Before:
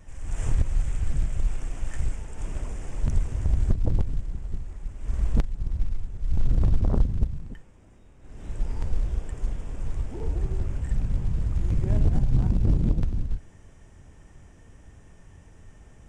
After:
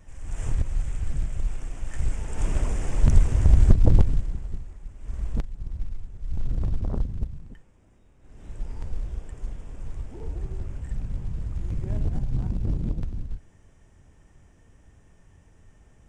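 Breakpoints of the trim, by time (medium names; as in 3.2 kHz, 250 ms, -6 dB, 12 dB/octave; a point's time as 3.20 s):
1.87 s -2 dB
2.36 s +7 dB
4.02 s +7 dB
4.79 s -5 dB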